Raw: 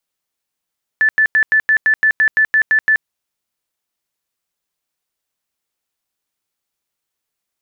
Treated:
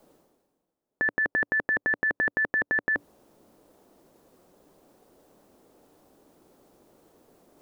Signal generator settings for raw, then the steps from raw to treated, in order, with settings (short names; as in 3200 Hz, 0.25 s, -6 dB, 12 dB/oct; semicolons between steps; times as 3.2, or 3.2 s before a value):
tone bursts 1750 Hz, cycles 138, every 0.17 s, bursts 12, -9 dBFS
EQ curve 110 Hz 0 dB, 290 Hz +11 dB, 560 Hz +8 dB, 2200 Hz -16 dB; reverse; upward compressor, threshold -38 dBFS; reverse